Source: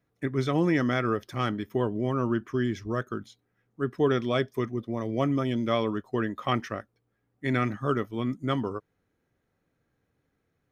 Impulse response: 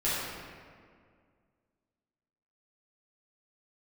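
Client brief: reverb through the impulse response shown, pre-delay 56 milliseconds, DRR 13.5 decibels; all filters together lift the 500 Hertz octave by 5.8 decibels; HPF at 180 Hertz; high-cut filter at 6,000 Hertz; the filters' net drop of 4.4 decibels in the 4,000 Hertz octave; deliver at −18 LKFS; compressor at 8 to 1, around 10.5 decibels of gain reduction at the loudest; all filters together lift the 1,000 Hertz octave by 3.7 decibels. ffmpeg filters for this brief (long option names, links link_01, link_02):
-filter_complex "[0:a]highpass=180,lowpass=6000,equalizer=frequency=500:width_type=o:gain=7,equalizer=frequency=1000:width_type=o:gain=3.5,equalizer=frequency=4000:width_type=o:gain=-6,acompressor=threshold=-24dB:ratio=8,asplit=2[link_01][link_02];[1:a]atrim=start_sample=2205,adelay=56[link_03];[link_02][link_03]afir=irnorm=-1:irlink=0,volume=-24dB[link_04];[link_01][link_04]amix=inputs=2:normalize=0,volume=12.5dB"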